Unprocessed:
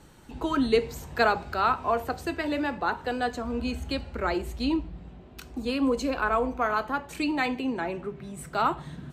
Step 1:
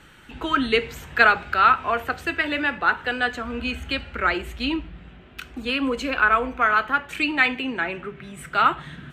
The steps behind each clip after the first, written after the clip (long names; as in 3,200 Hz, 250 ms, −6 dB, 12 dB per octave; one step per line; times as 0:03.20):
flat-topped bell 2,100 Hz +11.5 dB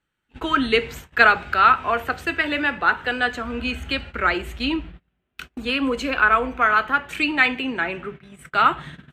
noise gate −37 dBFS, range −30 dB
level +1.5 dB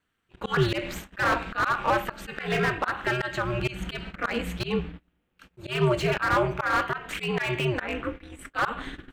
ring modulation 120 Hz
volume swells 156 ms
slew-rate limiting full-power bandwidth 79 Hz
level +4 dB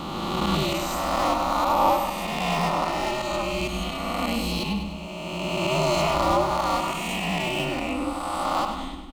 peak hold with a rise ahead of every peak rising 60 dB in 2.65 s
phaser with its sweep stopped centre 430 Hz, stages 6
on a send: repeating echo 100 ms, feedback 54%, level −8.5 dB
on the sum: level +1.5 dB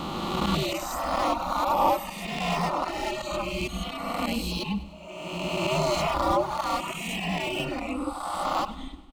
reverb reduction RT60 1.8 s